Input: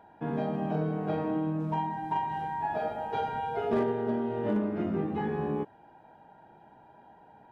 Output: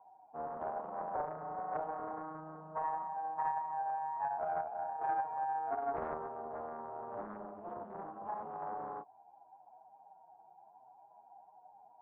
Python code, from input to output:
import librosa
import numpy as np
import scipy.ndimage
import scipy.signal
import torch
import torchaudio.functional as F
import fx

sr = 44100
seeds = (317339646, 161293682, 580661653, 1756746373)

y = fx.formant_cascade(x, sr, vowel='a')
y = fx.stretch_vocoder(y, sr, factor=1.6)
y = fx.doppler_dist(y, sr, depth_ms=0.53)
y = F.gain(torch.from_numpy(y), 4.5).numpy()